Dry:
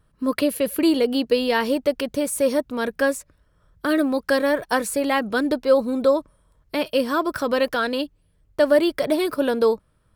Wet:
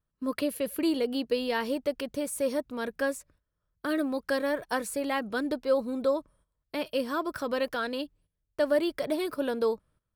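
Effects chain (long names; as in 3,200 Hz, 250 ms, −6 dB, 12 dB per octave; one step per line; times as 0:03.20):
noise gate −51 dBFS, range −13 dB
level −8.5 dB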